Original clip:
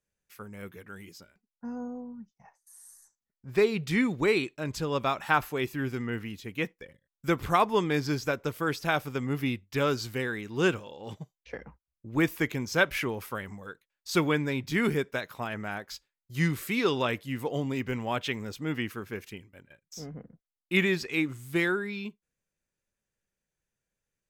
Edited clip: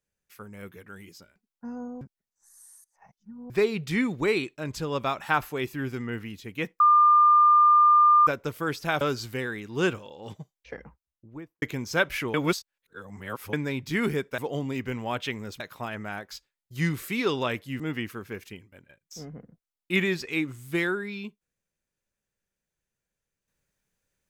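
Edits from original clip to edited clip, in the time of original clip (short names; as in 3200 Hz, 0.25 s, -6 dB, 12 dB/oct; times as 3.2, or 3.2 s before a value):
2.01–3.5 reverse
6.8–8.27 bleep 1200 Hz -14 dBFS
9.01–9.82 cut
11.62–12.43 studio fade out
13.15–14.34 reverse
17.39–18.61 move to 15.19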